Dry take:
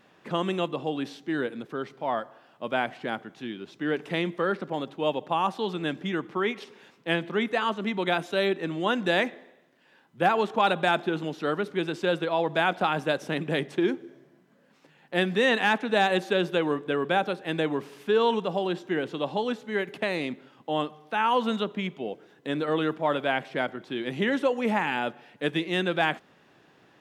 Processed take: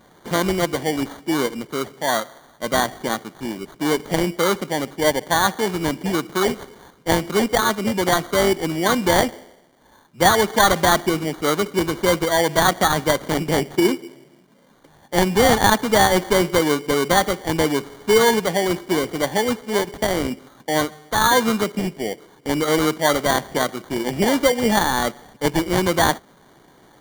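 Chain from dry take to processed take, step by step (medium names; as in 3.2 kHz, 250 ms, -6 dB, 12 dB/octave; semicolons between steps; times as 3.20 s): sample-rate reducer 2.6 kHz, jitter 0%; trim +7.5 dB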